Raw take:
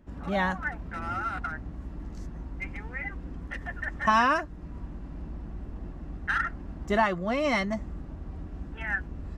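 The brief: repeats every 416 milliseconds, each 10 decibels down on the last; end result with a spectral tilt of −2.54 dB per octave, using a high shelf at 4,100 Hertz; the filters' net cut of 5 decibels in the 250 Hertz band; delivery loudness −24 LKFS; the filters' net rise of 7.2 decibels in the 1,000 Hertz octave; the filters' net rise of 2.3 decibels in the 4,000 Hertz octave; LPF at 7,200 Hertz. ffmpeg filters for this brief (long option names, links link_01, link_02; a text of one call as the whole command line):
ffmpeg -i in.wav -af "lowpass=7200,equalizer=frequency=250:width_type=o:gain=-7,equalizer=frequency=1000:width_type=o:gain=9,equalizer=frequency=4000:width_type=o:gain=6,highshelf=frequency=4100:gain=-5.5,aecho=1:1:416|832|1248|1664:0.316|0.101|0.0324|0.0104,volume=1dB" out.wav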